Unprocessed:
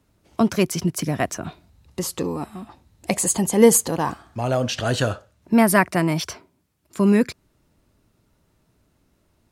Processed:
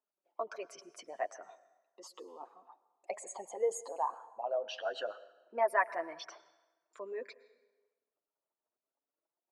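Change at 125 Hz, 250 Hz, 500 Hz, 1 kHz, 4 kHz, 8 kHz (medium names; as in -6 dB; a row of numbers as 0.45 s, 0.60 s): under -40 dB, -37.0 dB, -14.5 dB, -10.5 dB, -18.5 dB, -25.0 dB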